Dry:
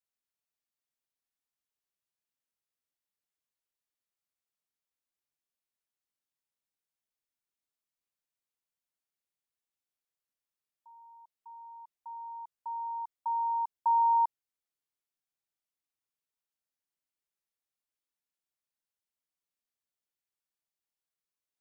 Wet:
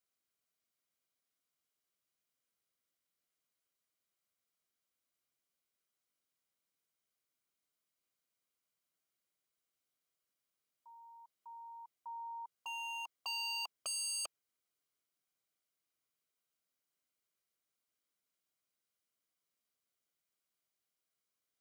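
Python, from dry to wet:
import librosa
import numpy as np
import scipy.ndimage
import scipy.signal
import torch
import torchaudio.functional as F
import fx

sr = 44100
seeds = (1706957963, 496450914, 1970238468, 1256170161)

y = 10.0 ** (-37.5 / 20.0) * (np.abs((x / 10.0 ** (-37.5 / 20.0) + 3.0) % 4.0 - 2.0) - 1.0)
y = fx.notch_comb(y, sr, f0_hz=880.0)
y = y * 10.0 ** (4.5 / 20.0)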